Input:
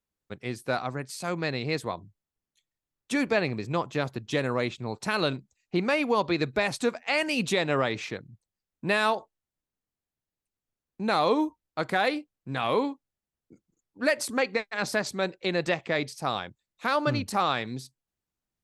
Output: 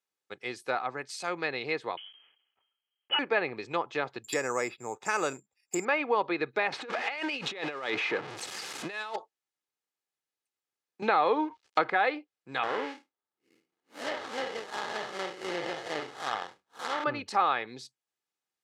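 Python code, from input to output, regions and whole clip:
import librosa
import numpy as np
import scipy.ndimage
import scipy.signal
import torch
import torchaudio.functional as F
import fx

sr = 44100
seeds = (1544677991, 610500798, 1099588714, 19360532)

y = fx.chain(x, sr, fx.block_float(bits=3),
    fx.freq_invert(carrier_hz=3200),
    fx.sustainer(db_per_s=78.0), at=(1.97, 3.19))
y = fx.chain(y, sr, fx.notch(hz=3100.0, q=6.1),
    fx.resample_bad(factor=6, down='filtered', up='zero_stuff'), at=(4.24, 5.85))
y = fx.chain(y, sr, fx.zero_step(step_db=-31.5),
    fx.highpass(hz=130.0, slope=12),
    fx.over_compress(threshold_db=-29.0, ratio=-0.5), at=(6.72, 9.16))
y = fx.chain(y, sr, fx.law_mismatch(coded='mu'),
    fx.lowpass(hz=6800.0, slope=12),
    fx.band_squash(depth_pct=100), at=(11.02, 11.9))
y = fx.chain(y, sr, fx.spec_blur(span_ms=129.0),
    fx.sample_hold(seeds[0], rate_hz=2500.0, jitter_pct=20), at=(12.63, 17.04))
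y = fx.weighting(y, sr, curve='A')
y = fx.env_lowpass_down(y, sr, base_hz=2200.0, full_db=-26.0)
y = y + 0.32 * np.pad(y, (int(2.4 * sr / 1000.0), 0))[:len(y)]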